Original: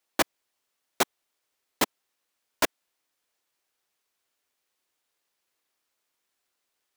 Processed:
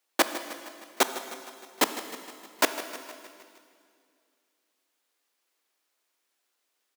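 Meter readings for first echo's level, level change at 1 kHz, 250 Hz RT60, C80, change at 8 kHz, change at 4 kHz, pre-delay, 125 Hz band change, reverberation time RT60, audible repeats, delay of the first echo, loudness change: -14.5 dB, +2.0 dB, 2.5 s, 9.5 dB, +2.0 dB, +2.0 dB, 18 ms, n/a, 2.2 s, 5, 0.155 s, 0.0 dB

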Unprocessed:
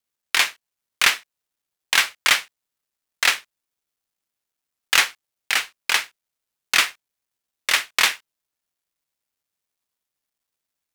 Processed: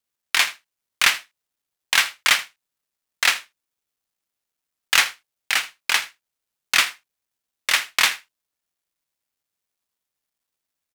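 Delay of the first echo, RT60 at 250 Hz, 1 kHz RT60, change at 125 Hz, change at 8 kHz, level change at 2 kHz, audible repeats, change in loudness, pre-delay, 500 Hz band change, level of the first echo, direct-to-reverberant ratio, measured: 80 ms, none, none, n/a, 0.0 dB, 0.0 dB, 1, 0.0 dB, none, -2.0 dB, -18.5 dB, none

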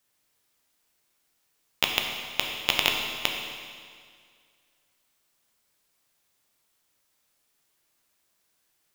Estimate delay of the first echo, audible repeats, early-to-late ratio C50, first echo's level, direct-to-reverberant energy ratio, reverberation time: none, none, 3.0 dB, none, 1.0 dB, 2.0 s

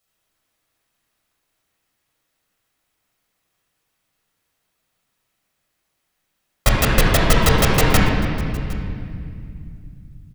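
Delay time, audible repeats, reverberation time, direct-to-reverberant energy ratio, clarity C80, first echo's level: 0.76 s, 1, 2.6 s, -3.5 dB, 1.0 dB, -21.5 dB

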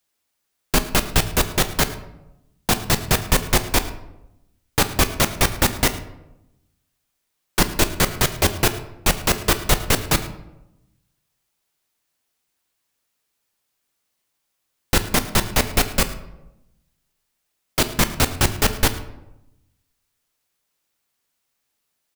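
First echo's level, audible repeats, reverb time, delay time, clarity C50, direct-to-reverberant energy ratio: -18.0 dB, 1, 0.90 s, 0.108 s, 12.0 dB, 9.0 dB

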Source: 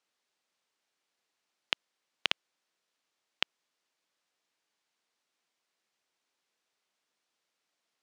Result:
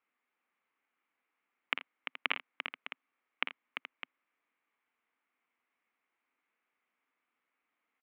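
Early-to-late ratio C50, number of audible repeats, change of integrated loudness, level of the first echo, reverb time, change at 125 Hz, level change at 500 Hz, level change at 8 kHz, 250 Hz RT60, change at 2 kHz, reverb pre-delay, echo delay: none, 5, -4.5 dB, -9.0 dB, none, n/a, -2.5 dB, under -20 dB, none, +1.5 dB, none, 48 ms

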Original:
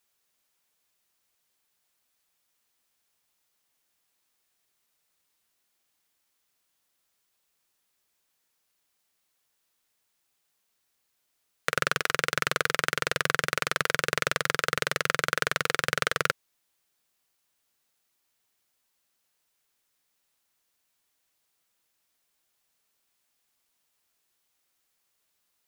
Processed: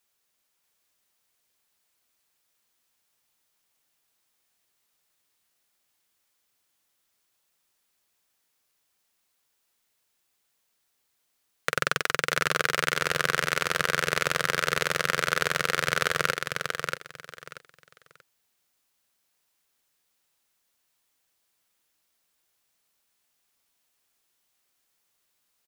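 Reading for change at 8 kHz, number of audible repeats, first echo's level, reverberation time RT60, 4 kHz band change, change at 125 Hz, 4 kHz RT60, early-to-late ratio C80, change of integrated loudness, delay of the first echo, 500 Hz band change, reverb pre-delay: +1.5 dB, 3, -4.5 dB, none, +1.5 dB, +1.5 dB, none, none, +1.0 dB, 0.634 s, +1.5 dB, none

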